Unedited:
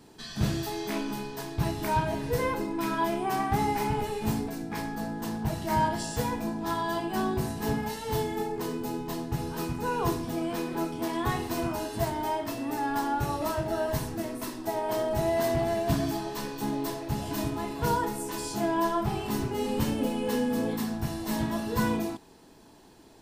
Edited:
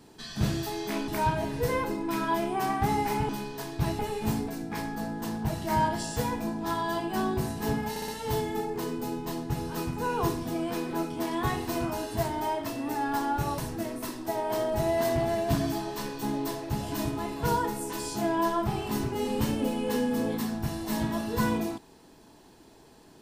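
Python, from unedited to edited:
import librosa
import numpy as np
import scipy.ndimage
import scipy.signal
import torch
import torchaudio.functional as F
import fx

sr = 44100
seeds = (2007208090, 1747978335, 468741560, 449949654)

y = fx.edit(x, sr, fx.move(start_s=1.08, length_s=0.7, to_s=3.99),
    fx.stutter(start_s=7.9, slice_s=0.06, count=4),
    fx.cut(start_s=13.4, length_s=0.57), tone=tone)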